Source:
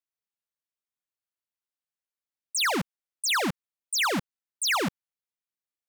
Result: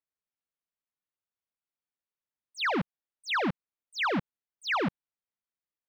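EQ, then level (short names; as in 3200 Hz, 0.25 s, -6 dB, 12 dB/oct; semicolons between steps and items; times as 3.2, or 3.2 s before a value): air absorption 320 m; 0.0 dB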